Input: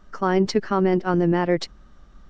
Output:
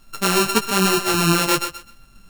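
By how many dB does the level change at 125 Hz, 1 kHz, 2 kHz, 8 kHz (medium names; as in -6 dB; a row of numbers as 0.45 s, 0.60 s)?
+0.5 dB, +4.5 dB, +9.0 dB, no reading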